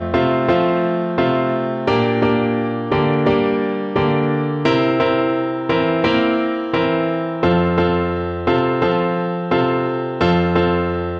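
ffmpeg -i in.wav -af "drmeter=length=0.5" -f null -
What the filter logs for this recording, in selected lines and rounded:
Channel 1: DR: 9.0
Overall DR: 9.0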